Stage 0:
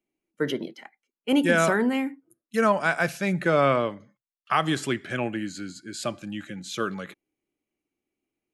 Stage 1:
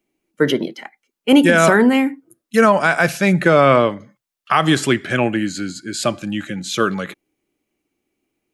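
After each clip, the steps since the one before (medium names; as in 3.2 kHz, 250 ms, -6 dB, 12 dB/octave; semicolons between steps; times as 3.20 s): loudness maximiser +11.5 dB; trim -1 dB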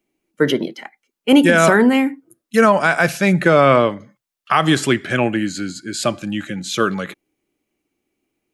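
no audible change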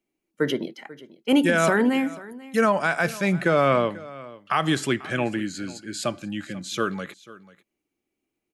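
delay 490 ms -19.5 dB; trim -7.5 dB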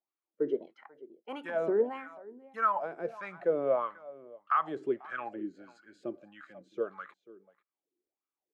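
wah-wah 1.6 Hz 360–1300 Hz, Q 5.3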